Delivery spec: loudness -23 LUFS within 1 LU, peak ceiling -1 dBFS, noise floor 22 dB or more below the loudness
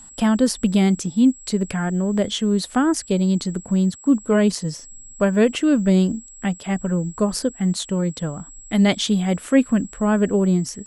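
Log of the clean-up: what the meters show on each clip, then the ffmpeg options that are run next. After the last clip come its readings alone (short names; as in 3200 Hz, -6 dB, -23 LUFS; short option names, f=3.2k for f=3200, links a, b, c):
steady tone 7700 Hz; tone level -41 dBFS; loudness -20.5 LUFS; peak -4.0 dBFS; loudness target -23.0 LUFS
-> -af "bandreject=f=7.7k:w=30"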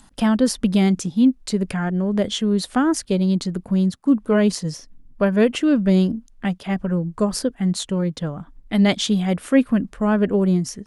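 steady tone none; loudness -20.5 LUFS; peak -4.0 dBFS; loudness target -23.0 LUFS
-> -af "volume=-2.5dB"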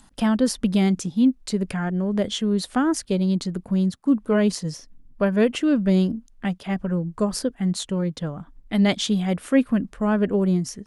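loudness -23.0 LUFS; peak -6.5 dBFS; noise floor -53 dBFS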